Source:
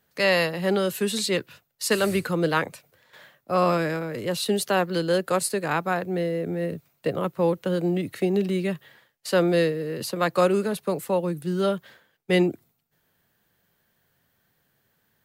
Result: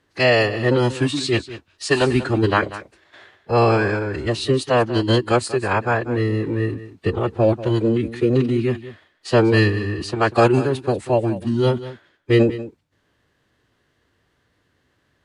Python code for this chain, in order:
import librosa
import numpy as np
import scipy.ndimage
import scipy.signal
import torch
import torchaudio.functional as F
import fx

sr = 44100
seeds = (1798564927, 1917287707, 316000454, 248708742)

y = fx.pitch_keep_formants(x, sr, semitones=-7.5)
y = fx.air_absorb(y, sr, metres=75.0)
y = y + 10.0 ** (-15.0 / 20.0) * np.pad(y, (int(190 * sr / 1000.0), 0))[:len(y)]
y = y * librosa.db_to_amplitude(6.0)